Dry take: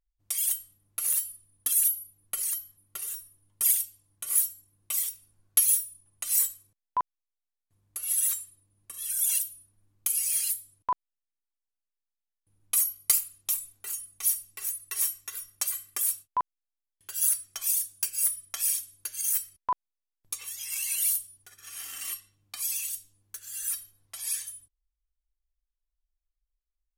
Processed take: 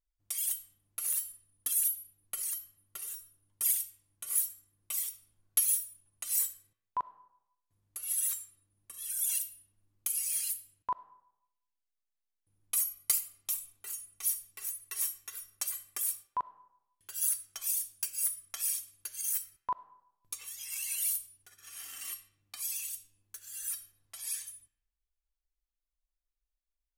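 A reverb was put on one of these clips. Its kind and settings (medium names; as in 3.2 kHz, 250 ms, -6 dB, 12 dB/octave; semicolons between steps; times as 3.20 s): algorithmic reverb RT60 0.79 s, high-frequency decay 0.65×, pre-delay 20 ms, DRR 16 dB; trim -5.5 dB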